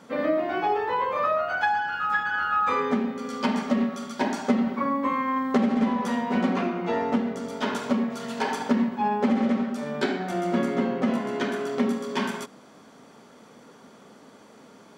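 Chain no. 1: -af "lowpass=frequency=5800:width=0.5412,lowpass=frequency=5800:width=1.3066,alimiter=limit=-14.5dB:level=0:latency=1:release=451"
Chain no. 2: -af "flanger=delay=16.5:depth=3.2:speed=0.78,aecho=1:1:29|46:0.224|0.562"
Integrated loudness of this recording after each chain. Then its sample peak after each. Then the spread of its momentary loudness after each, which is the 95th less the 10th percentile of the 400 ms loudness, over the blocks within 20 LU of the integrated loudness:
−27.0, −27.0 LKFS; −14.5, −12.5 dBFS; 5, 6 LU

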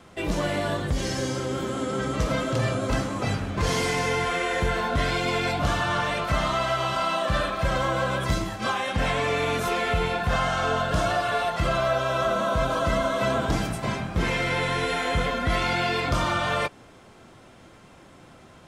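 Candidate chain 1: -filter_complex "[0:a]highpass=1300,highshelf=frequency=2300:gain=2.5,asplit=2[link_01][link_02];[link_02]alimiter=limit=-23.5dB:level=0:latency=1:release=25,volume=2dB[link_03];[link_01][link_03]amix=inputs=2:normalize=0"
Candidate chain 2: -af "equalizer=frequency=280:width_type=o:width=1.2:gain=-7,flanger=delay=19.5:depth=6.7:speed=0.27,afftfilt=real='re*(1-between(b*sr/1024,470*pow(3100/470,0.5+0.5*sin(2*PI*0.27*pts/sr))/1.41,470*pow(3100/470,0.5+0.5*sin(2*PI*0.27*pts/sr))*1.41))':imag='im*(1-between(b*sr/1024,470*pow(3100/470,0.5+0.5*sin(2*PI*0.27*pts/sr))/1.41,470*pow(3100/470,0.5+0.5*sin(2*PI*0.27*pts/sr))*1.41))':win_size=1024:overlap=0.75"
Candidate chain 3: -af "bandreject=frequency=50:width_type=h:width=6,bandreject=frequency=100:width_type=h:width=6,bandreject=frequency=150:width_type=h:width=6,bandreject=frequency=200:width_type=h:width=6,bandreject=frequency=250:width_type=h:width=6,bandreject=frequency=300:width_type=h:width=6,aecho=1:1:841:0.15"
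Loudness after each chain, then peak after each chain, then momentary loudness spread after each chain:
−23.0, −30.5, −25.5 LKFS; −12.5, −15.5, −11.5 dBFS; 5, 4, 5 LU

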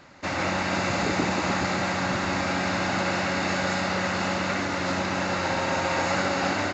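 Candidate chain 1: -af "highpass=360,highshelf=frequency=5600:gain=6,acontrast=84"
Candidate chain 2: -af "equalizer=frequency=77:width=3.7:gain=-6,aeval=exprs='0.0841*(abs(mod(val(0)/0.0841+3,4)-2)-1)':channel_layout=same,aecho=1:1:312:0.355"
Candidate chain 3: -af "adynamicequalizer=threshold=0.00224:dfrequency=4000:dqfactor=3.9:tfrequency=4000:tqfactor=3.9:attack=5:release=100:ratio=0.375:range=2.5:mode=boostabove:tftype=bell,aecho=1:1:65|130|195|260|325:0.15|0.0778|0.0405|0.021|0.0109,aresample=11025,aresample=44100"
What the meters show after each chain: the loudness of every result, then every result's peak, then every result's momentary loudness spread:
−19.0, −26.5, −25.0 LKFS; −7.0, −19.0, −11.5 dBFS; 2, 1, 2 LU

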